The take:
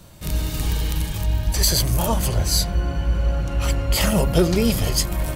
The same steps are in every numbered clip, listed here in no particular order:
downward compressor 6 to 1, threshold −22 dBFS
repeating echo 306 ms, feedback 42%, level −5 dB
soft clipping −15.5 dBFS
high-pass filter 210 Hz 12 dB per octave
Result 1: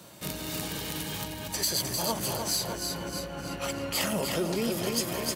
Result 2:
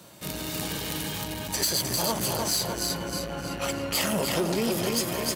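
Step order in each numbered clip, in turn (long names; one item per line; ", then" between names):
repeating echo, then downward compressor, then soft clipping, then high-pass filter
repeating echo, then soft clipping, then high-pass filter, then downward compressor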